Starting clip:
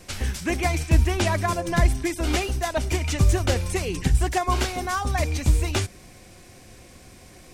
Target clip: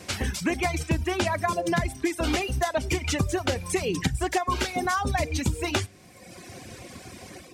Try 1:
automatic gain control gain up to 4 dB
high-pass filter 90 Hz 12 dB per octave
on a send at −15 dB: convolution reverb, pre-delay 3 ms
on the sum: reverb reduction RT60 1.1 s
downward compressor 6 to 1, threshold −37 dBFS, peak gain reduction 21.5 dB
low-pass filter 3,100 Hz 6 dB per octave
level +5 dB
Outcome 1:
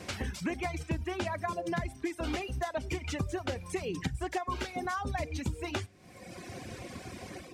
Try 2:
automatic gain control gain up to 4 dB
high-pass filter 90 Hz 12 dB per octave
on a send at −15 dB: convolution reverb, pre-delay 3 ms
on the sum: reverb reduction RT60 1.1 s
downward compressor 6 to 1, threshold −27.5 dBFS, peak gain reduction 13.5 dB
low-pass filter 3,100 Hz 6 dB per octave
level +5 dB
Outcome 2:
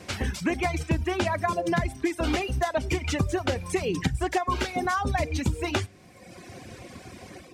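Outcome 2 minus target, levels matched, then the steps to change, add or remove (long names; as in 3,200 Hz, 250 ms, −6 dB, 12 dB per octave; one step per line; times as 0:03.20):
8,000 Hz band −4.5 dB
change: low-pass filter 8,000 Hz 6 dB per octave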